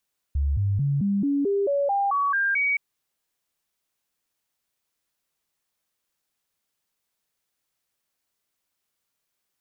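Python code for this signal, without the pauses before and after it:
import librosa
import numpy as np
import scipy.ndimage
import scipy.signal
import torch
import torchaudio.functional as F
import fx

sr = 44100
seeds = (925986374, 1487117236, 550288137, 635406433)

y = fx.stepped_sweep(sr, from_hz=70.6, direction='up', per_octave=2, tones=11, dwell_s=0.22, gap_s=0.0, level_db=-20.0)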